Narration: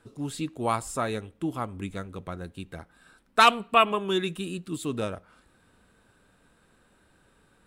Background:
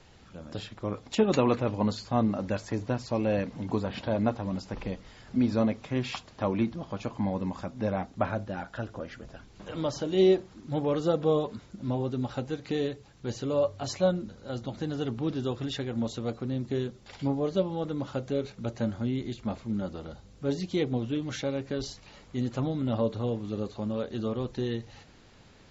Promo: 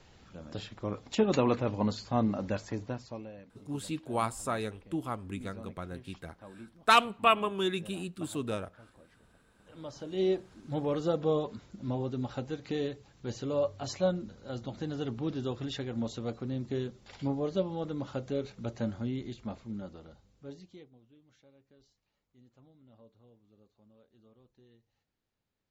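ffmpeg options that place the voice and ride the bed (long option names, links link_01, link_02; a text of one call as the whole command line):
ffmpeg -i stem1.wav -i stem2.wav -filter_complex "[0:a]adelay=3500,volume=-4dB[link_01];[1:a]volume=15.5dB,afade=type=out:start_time=2.55:duration=0.77:silence=0.112202,afade=type=in:start_time=9.59:duration=1.13:silence=0.125893,afade=type=out:start_time=18.86:duration=2.05:silence=0.0421697[link_02];[link_01][link_02]amix=inputs=2:normalize=0" out.wav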